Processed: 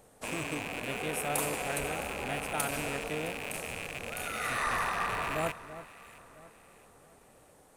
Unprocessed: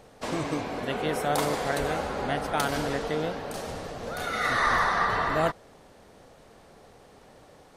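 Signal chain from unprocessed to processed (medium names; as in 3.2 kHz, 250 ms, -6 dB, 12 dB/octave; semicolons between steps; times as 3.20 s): rattle on loud lows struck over -45 dBFS, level -18 dBFS; resonant high shelf 6.7 kHz +10 dB, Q 1.5; echo whose repeats swap between lows and highs 332 ms, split 1.7 kHz, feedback 60%, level -13 dB; trim -7.5 dB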